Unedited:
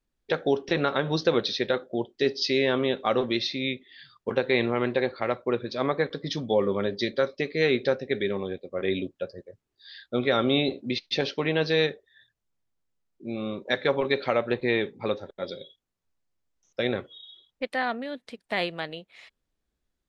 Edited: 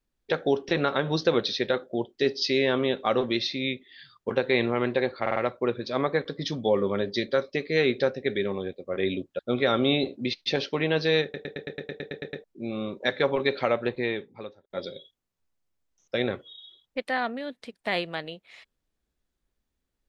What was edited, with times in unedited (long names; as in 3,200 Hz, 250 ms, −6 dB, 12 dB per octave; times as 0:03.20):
0:05.21: stutter 0.05 s, 4 plays
0:09.24–0:10.04: remove
0:11.88: stutter in place 0.11 s, 11 plays
0:14.38–0:15.35: fade out